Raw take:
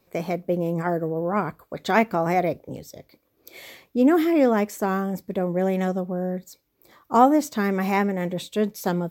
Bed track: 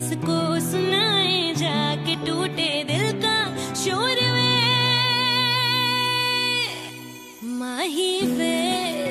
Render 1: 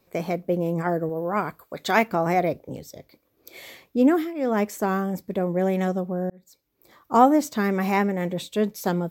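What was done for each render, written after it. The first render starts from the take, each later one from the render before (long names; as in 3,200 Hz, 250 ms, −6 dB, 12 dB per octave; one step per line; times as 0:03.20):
0:01.09–0:02.08: spectral tilt +1.5 dB per octave
0:04.07–0:04.61: duck −17 dB, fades 0.27 s
0:06.30–0:07.14: fade in equal-power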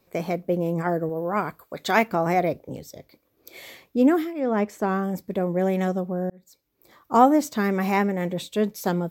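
0:04.39–0:05.02: low-pass filter 2,200 Hz → 3,700 Hz 6 dB per octave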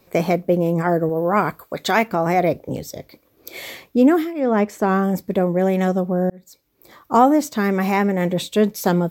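in parallel at −1.5 dB: brickwall limiter −14.5 dBFS, peak gain reduction 10.5 dB
on the sum: speech leveller within 4 dB 0.5 s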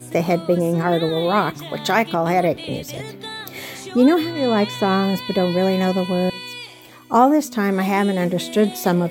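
mix in bed track −11 dB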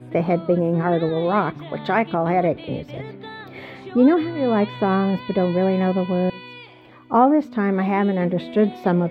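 high-frequency loss of the air 420 metres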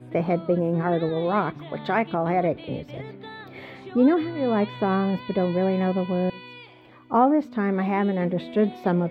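level −3.5 dB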